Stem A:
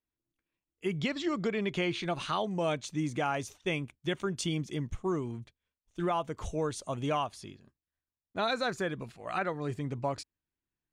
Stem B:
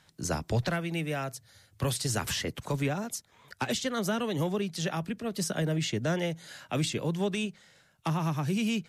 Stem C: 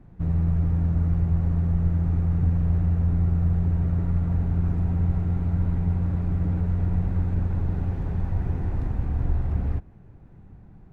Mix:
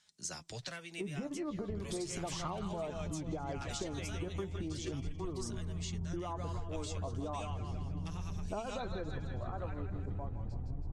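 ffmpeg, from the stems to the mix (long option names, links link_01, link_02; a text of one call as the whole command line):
ffmpeg -i stem1.wav -i stem2.wav -i stem3.wav -filter_complex "[0:a]asubboost=boost=6.5:cutoff=52,dynaudnorm=framelen=200:gausssize=17:maxgain=10.5dB,adelay=150,volume=2.5dB,asplit=2[link_01][link_02];[link_02]volume=-17dB[link_03];[1:a]crystalizer=i=8:c=0,volume=-14.5dB,asplit=2[link_04][link_05];[2:a]tiltshelf=frequency=1400:gain=6.5,alimiter=limit=-15.5dB:level=0:latency=1:release=117,adelay=1500,volume=0dB,asplit=2[link_06][link_07];[link_07]volume=-17.5dB[link_08];[link_05]apad=whole_len=548001[link_09];[link_06][link_09]sidechaincompress=threshold=-46dB:ratio=8:attack=39:release=150[link_10];[link_01][link_10]amix=inputs=2:normalize=0,lowpass=frequency=1100:width=0.5412,lowpass=frequency=1100:width=1.3066,acompressor=threshold=-23dB:ratio=6,volume=0dB[link_11];[link_03][link_08]amix=inputs=2:normalize=0,aecho=0:1:162|324|486|648|810|972|1134|1296:1|0.56|0.314|0.176|0.0983|0.0551|0.0308|0.0173[link_12];[link_04][link_11][link_12]amix=inputs=3:normalize=0,lowpass=frequency=8000:width=0.5412,lowpass=frequency=8000:width=1.3066,flanger=delay=4.7:depth=5.6:regen=43:speed=0.35:shape=sinusoidal,acompressor=threshold=-36dB:ratio=6" out.wav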